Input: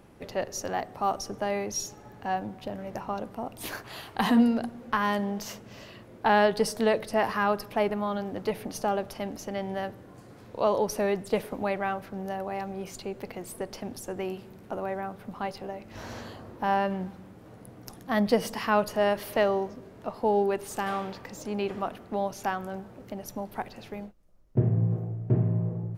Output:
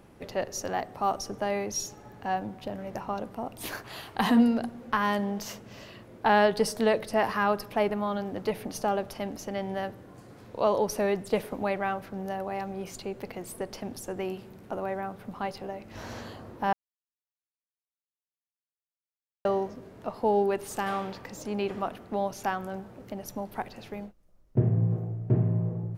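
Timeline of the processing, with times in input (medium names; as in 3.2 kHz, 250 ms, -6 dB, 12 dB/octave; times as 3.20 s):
16.73–19.45 s: mute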